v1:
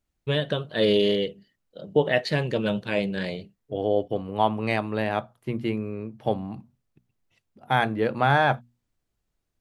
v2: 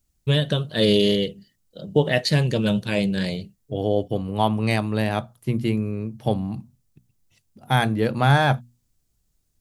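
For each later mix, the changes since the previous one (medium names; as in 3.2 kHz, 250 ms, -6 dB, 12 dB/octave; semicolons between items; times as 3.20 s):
master: add tone controls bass +9 dB, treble +14 dB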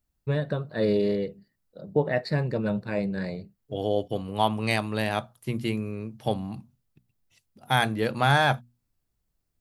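first voice: add boxcar filter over 14 samples; master: add bass shelf 470 Hz -7.5 dB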